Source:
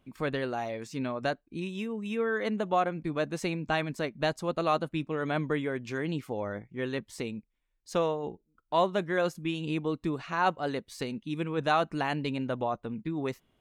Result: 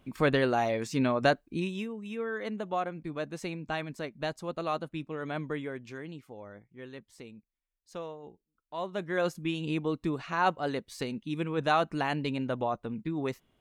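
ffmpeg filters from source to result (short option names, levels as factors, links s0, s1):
-af "volume=7.94,afade=t=out:st=1.43:d=0.52:silence=0.281838,afade=t=out:st=5.66:d=0.52:silence=0.446684,afade=t=in:st=8.77:d=0.52:silence=0.251189"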